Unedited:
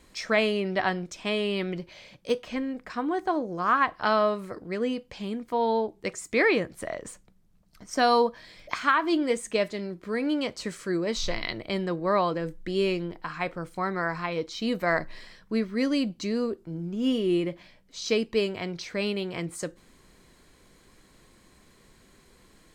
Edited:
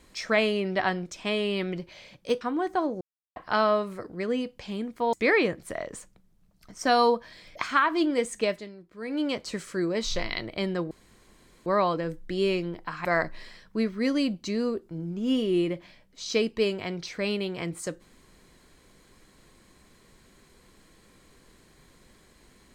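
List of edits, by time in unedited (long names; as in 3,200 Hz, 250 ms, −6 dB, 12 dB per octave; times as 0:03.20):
0:02.41–0:02.93: remove
0:03.53–0:03.88: silence
0:05.65–0:06.25: remove
0:09.55–0:10.38: duck −12 dB, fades 0.29 s
0:12.03: splice in room tone 0.75 s
0:13.42–0:14.81: remove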